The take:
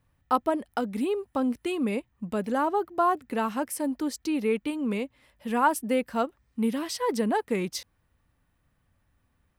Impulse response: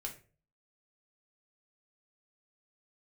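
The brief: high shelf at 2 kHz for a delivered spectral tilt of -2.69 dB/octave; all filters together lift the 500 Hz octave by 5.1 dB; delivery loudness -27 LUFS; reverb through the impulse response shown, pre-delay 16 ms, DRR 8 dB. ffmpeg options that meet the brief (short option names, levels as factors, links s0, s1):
-filter_complex "[0:a]equalizer=f=500:t=o:g=6.5,highshelf=f=2000:g=-4.5,asplit=2[s0][s1];[1:a]atrim=start_sample=2205,adelay=16[s2];[s1][s2]afir=irnorm=-1:irlink=0,volume=0.473[s3];[s0][s3]amix=inputs=2:normalize=0,volume=0.794"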